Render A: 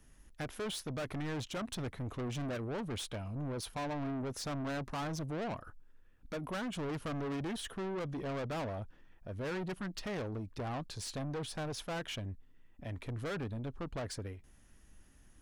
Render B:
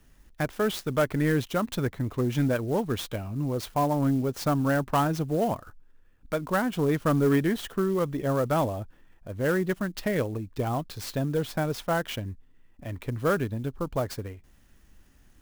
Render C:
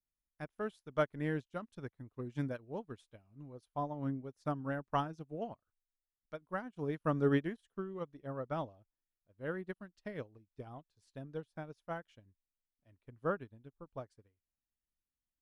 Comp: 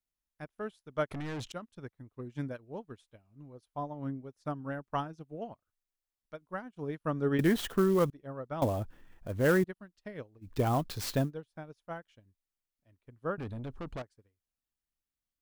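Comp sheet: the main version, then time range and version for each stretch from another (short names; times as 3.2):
C
1.11–1.52 from A
7.39–8.1 from B
8.62–9.64 from B
10.46–11.26 from B, crossfade 0.10 s
13.38–14.02 from A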